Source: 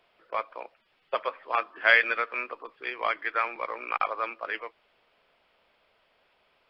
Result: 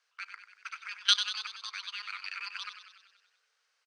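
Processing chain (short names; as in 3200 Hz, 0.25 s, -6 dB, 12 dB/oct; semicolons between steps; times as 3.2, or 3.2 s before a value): speed mistake 45 rpm record played at 78 rpm; level quantiser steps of 19 dB; on a send: frequency-shifting echo 95 ms, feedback 61%, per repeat +31 Hz, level -9.5 dB; on the sum: frequency shift +430 Hz; gain -1.5 dB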